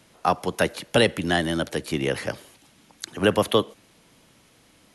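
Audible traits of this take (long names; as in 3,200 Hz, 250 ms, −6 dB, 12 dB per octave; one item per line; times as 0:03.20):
background noise floor −58 dBFS
spectral slope −4.5 dB per octave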